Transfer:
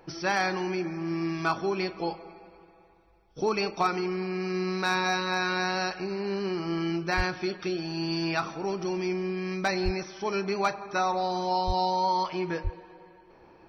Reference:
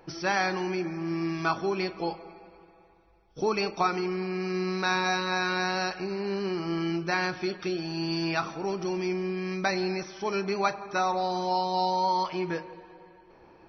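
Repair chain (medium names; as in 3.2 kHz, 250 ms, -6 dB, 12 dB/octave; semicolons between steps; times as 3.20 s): clip repair -17 dBFS; de-plosive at 7.16/9.84/11.66/12.63 s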